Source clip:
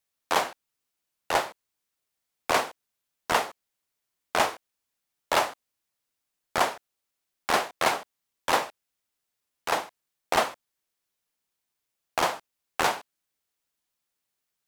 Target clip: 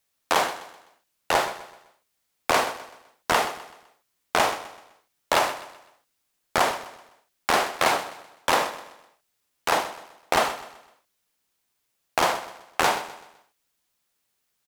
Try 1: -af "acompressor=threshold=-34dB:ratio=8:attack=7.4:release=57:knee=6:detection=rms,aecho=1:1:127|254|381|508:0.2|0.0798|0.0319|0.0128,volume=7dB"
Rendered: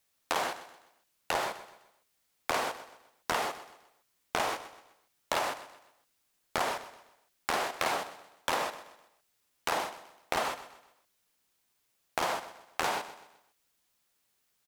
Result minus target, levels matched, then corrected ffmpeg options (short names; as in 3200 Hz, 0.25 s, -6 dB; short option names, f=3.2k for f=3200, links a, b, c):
compressor: peak gain reduction +10 dB
-af "acompressor=threshold=-22.5dB:ratio=8:attack=7.4:release=57:knee=6:detection=rms,aecho=1:1:127|254|381|508:0.2|0.0798|0.0319|0.0128,volume=7dB"